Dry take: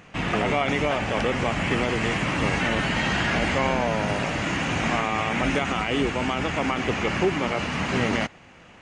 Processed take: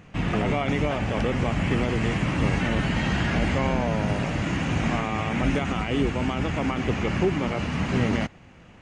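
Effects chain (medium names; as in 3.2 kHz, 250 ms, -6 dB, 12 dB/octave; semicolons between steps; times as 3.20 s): bass shelf 290 Hz +11 dB; trim -5 dB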